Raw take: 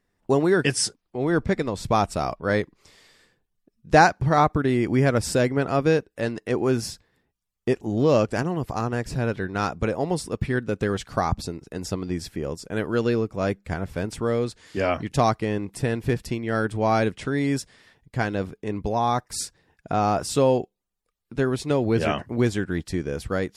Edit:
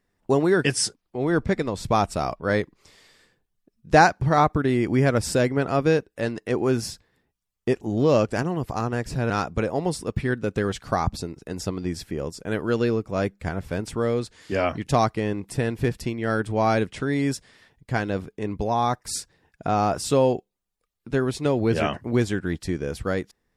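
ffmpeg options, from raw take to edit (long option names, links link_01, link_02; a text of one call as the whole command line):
ffmpeg -i in.wav -filter_complex "[0:a]asplit=2[link_01][link_02];[link_01]atrim=end=9.302[link_03];[link_02]atrim=start=9.548[link_04];[link_03][link_04]acrossfade=duration=0.004:curve1=hsin:curve2=hsin" out.wav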